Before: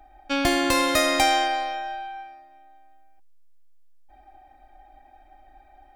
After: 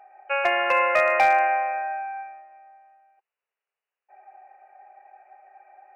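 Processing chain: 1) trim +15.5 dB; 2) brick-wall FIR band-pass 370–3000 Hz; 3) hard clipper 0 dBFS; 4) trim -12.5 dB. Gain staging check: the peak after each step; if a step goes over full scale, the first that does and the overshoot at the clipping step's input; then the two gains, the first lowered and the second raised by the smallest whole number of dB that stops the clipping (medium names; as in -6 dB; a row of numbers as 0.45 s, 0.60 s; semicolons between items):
+7.5 dBFS, +4.5 dBFS, 0.0 dBFS, -12.5 dBFS; step 1, 4.5 dB; step 1 +10.5 dB, step 4 -7.5 dB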